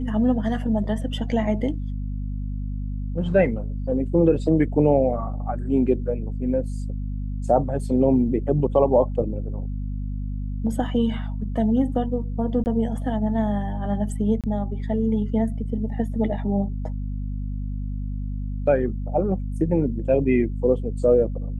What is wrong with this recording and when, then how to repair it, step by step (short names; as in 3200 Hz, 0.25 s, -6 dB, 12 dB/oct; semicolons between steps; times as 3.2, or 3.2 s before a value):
hum 50 Hz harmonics 5 -28 dBFS
12.64–12.66 gap 19 ms
14.41–14.44 gap 27 ms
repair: de-hum 50 Hz, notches 5; interpolate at 12.64, 19 ms; interpolate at 14.41, 27 ms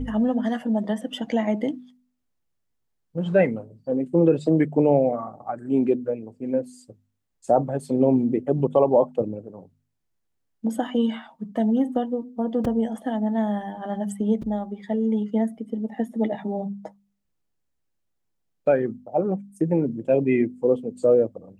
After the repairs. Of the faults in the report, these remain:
none